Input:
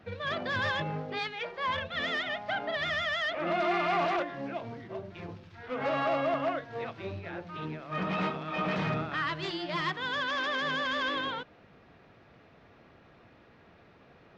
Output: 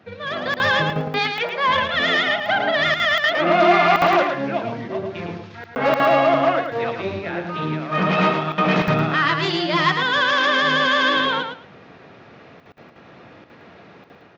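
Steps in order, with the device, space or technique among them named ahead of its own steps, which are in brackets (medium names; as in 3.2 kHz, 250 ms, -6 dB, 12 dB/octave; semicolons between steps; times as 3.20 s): call with lost packets (high-pass 120 Hz 12 dB/octave; resampled via 16 kHz; level rider gain up to 8.5 dB; lost packets of 60 ms); feedback delay 110 ms, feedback 18%, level -6 dB; trim +4 dB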